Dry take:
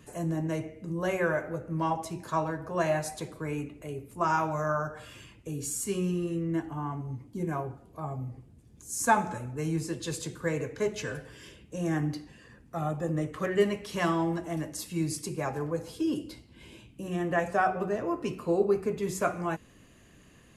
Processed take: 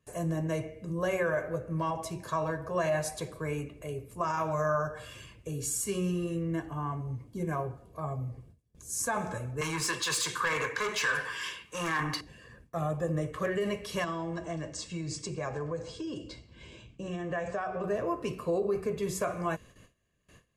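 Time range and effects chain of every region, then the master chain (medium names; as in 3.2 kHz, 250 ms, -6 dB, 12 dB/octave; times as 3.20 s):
9.61–12.21 s: overdrive pedal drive 23 dB, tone 4.7 kHz, clips at -16 dBFS + resonant low shelf 790 Hz -6.5 dB, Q 3 + three bands expanded up and down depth 40%
14.04–17.84 s: steep low-pass 8 kHz 48 dB/octave + compression 4:1, threshold -31 dBFS
whole clip: gate with hold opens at -45 dBFS; peak limiter -22 dBFS; comb 1.8 ms, depth 42%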